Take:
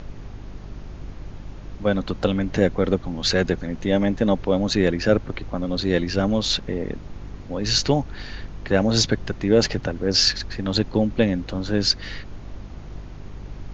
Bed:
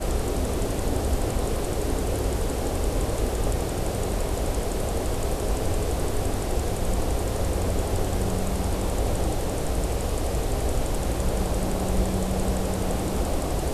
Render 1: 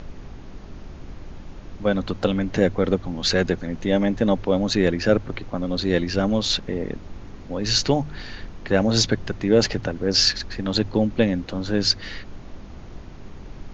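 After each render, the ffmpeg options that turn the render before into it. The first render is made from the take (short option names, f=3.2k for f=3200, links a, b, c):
-af "bandreject=f=50:t=h:w=4,bandreject=f=100:t=h:w=4,bandreject=f=150:t=h:w=4"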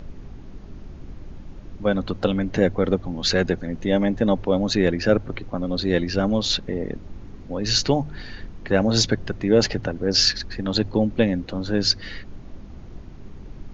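-af "afftdn=nr=6:nf=-40"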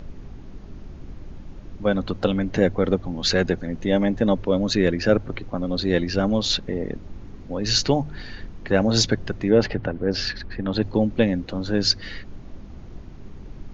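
-filter_complex "[0:a]asettb=1/sr,asplit=3[a][b][c];[a]atrim=end=4.334[d];[b]atrim=start=4.33:end=4.98,asetpts=PTS-STARTPTS,afade=t=in:d=0.004:c=qsin,afade=t=out:st=0.646:d=0.004:c=qsin,equalizer=f=780:w=7.5:g=-11.5[e];[c]atrim=start=4.976[f];[d][e]acrossfade=d=0.004:c1=hsin:c2=qsin[g];[g][f]acrossfade=d=0.004:c1=qsin:c2=hsin,asettb=1/sr,asplit=3[h][i][j];[h]atrim=end=9.504[k];[i]atrim=start=9.5:end=10.82,asetpts=PTS-STARTPTS,afade=t=in:d=0.004:c=qsin,afade=t=out:st=1.316:d=0.004:c=qsin,lowpass=2.8k[l];[j]atrim=start=10.816[m];[k][l]acrossfade=d=0.004:c1=hsin:c2=qsin[n];[n][m]acrossfade=d=0.004:c1=qsin:c2=hsin"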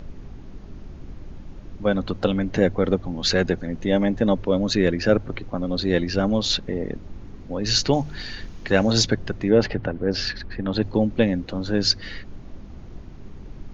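-filter_complex "[0:a]asettb=1/sr,asplit=3[a][b][c];[a]atrim=end=7.934[d];[b]atrim=start=7.93:end=8.93,asetpts=PTS-STARTPTS,afade=t=in:d=0.004:c=qsin,afade=t=out:st=0.996:d=0.004:c=qsin,highshelf=f=2.8k:g=11.5[e];[c]atrim=start=8.926[f];[d][e]acrossfade=d=0.004:c1=hsin:c2=qsin[g];[g][f]acrossfade=d=0.004:c1=qsin:c2=hsin"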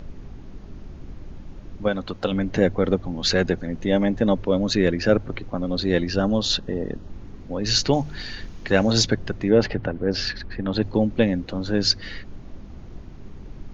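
-filter_complex "[0:a]asettb=1/sr,asplit=3[a][b][c];[a]atrim=end=1.884[d];[b]atrim=start=1.88:end=2.32,asetpts=PTS-STARTPTS,afade=t=in:d=0.004:c=qsin,afade=t=out:st=0.436:d=0.004:c=qsin,lowshelf=f=430:g=-6.5[e];[c]atrim=start=2.316[f];[d][e]acrossfade=d=0.004:c1=hsin:c2=qsin[g];[g][f]acrossfade=d=0.004:c1=qsin:c2=hsin,asettb=1/sr,asplit=3[h][i][j];[h]atrim=end=6.124[k];[i]atrim=start=6.12:end=7.1,asetpts=PTS-STARTPTS,afade=t=in:d=0.004:c=qsin,afade=t=out:st=0.976:d=0.004:c=qsin,asuperstop=centerf=2200:order=4:qfactor=4.3[l];[j]atrim=start=7.096[m];[k][l]acrossfade=d=0.004:c1=hsin:c2=qsin[n];[n][m]acrossfade=d=0.004:c1=qsin:c2=hsin"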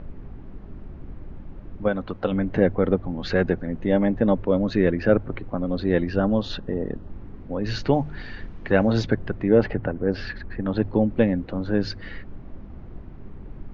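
-af "lowpass=2k"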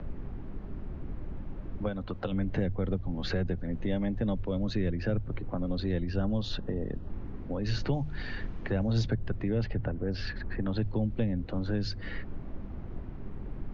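-filter_complex "[0:a]acrossover=split=110|1200[a][b][c];[c]alimiter=level_in=3.5dB:limit=-24dB:level=0:latency=1:release=369,volume=-3.5dB[d];[a][b][d]amix=inputs=3:normalize=0,acrossover=split=140|3000[e][f][g];[f]acompressor=threshold=-34dB:ratio=4[h];[e][h][g]amix=inputs=3:normalize=0"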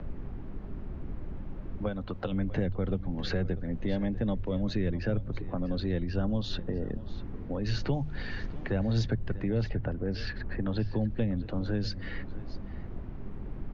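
-af "aecho=1:1:645:0.141"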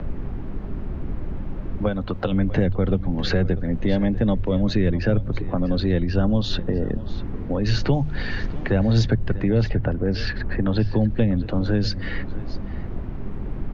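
-af "volume=9.5dB"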